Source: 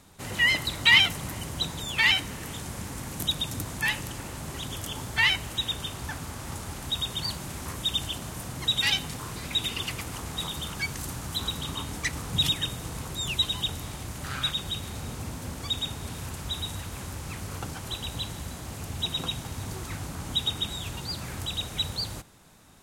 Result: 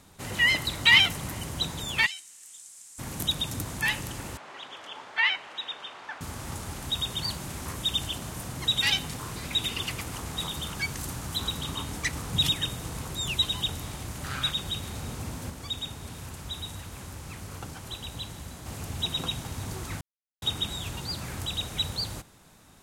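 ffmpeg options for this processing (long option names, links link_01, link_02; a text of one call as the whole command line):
ffmpeg -i in.wav -filter_complex "[0:a]asplit=3[link_01][link_02][link_03];[link_01]afade=type=out:start_time=2.05:duration=0.02[link_04];[link_02]bandpass=frequency=7900:width_type=q:width=2.6,afade=type=in:start_time=2.05:duration=0.02,afade=type=out:start_time=2.98:duration=0.02[link_05];[link_03]afade=type=in:start_time=2.98:duration=0.02[link_06];[link_04][link_05][link_06]amix=inputs=3:normalize=0,asettb=1/sr,asplit=3[link_07][link_08][link_09];[link_07]atrim=end=4.374[link_10];[link_08]atrim=start=4.37:end=6.21,asetpts=PTS-STARTPTS,afade=type=in:duration=0.004:curve=qsin,afade=type=out:start_time=1.836:duration=0.004:curve=qsin,highpass=630,lowpass=2800[link_11];[link_09]atrim=start=6.206[link_12];[link_10][link_11]acrossfade=duration=0.004:curve1=hsin:curve2=qsin[link_13];[link_13][link_12]acrossfade=duration=0.004:curve1=qsin:curve2=hsin,asplit=5[link_14][link_15][link_16][link_17][link_18];[link_14]atrim=end=15.502[link_19];[link_15]atrim=start=15.498:end=18.662,asetpts=PTS-STARTPTS,volume=-4dB[link_20];[link_16]atrim=start=18.658:end=20.01,asetpts=PTS-STARTPTS,afade=type=out:start_time=1.348:duration=0.004:curve=hsin[link_21];[link_17]atrim=start=20.01:end=20.42,asetpts=PTS-STARTPTS,volume=0[link_22];[link_18]atrim=start=20.42,asetpts=PTS-STARTPTS,afade=type=in:duration=0.004:curve=hsin[link_23];[link_19][link_20]acrossfade=duration=0.004:curve1=hsin:curve2=hsin[link_24];[link_21][link_22][link_23]concat=n=3:v=0:a=1[link_25];[link_24][link_25]acrossfade=duration=0.004:curve1=hsin:curve2=hsin" out.wav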